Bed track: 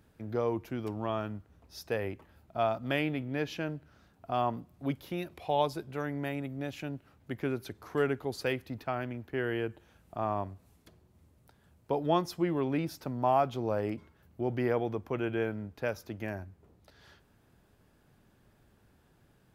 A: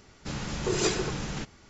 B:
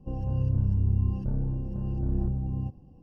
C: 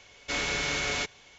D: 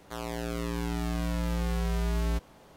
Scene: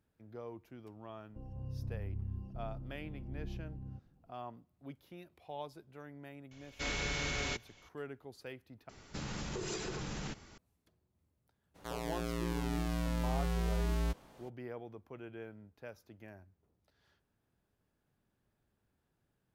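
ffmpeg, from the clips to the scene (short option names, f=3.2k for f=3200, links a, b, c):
-filter_complex "[0:a]volume=-15.5dB[a];[3:a]lowshelf=f=190:g=10.5[b];[1:a]acompressor=threshold=-35dB:ratio=6:attack=3.2:release=140:knee=1:detection=peak[c];[a]asplit=2[d][e];[d]atrim=end=8.894[f];[c]atrim=end=1.69,asetpts=PTS-STARTPTS,volume=-1.5dB[g];[e]atrim=start=10.576[h];[2:a]atrim=end=3.02,asetpts=PTS-STARTPTS,volume=-15.5dB,afade=t=in:d=0.004:c=hsin,afade=t=out:st=3.016:d=0.004:c=hsin,adelay=1290[i];[b]atrim=end=1.38,asetpts=PTS-STARTPTS,volume=-8dB,afade=t=in:d=0.004:c=hsin,afade=t=out:st=1.376:d=0.004:c=hsin,adelay=6510[j];[4:a]atrim=end=2.76,asetpts=PTS-STARTPTS,volume=-4.5dB,afade=t=in:d=0.02,afade=t=out:st=2.74:d=0.02,adelay=11740[k];[f][g]acrossfade=d=0.004:c1=hsin:c2=hsin[l];[l][h]acrossfade=d=0.004:c1=hsin:c2=hsin[m];[m][i][j][k]amix=inputs=4:normalize=0"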